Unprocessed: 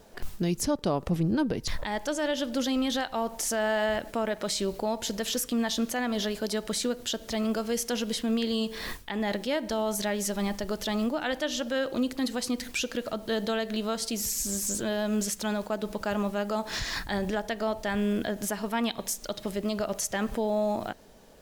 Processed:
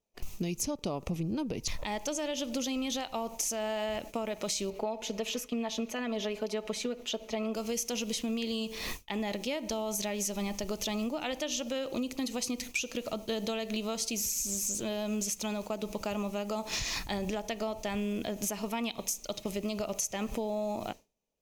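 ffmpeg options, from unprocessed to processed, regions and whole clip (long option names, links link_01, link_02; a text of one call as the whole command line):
ffmpeg -i in.wav -filter_complex "[0:a]asettb=1/sr,asplit=3[link_01][link_02][link_03];[link_01]atrim=end=4.704[link_04];[link_02]atrim=start=4.7:end=7.55,asetpts=PTS-STARTPTS,afade=type=in:duration=0.004:curve=qsin,afade=type=out:start_time=2.846:duration=0.004:curve=qsin,aecho=1:1:4.7:0.67,atrim=end_sample=125685,acompressor=mode=upward:threshold=-32dB:ratio=2.5:attack=3.2:release=140:knee=2.83:detection=peak,bass=frequency=250:gain=-9,treble=frequency=4000:gain=-14[link_05];[link_03]atrim=start=7.546[link_06];[link_04][link_05]acrossfade=duration=0.004:curve1=hsin:curve2=qsin[link_07];[link_07][link_06]acrossfade=duration=0.004:curve1=qsin:curve2=hsin,agate=range=-33dB:threshold=-34dB:ratio=3:detection=peak,equalizer=frequency=1600:width_type=o:width=0.33:gain=-12,equalizer=frequency=2500:width_type=o:width=0.33:gain=9,equalizer=frequency=6300:width_type=o:width=0.33:gain=9,equalizer=frequency=12500:width_type=o:width=0.33:gain=4,acompressor=threshold=-30dB:ratio=6" out.wav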